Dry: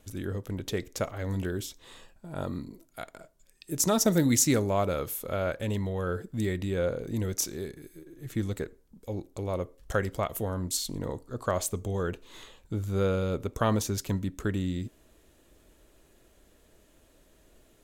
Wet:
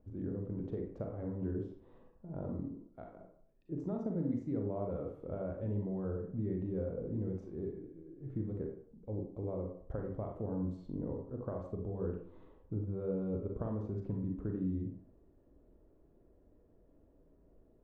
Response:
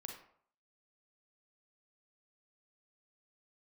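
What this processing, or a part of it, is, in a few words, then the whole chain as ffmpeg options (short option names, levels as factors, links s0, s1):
television next door: -filter_complex "[0:a]acompressor=threshold=0.0355:ratio=6,lowpass=590[s0];[1:a]atrim=start_sample=2205[s1];[s0][s1]afir=irnorm=-1:irlink=0,volume=1.12"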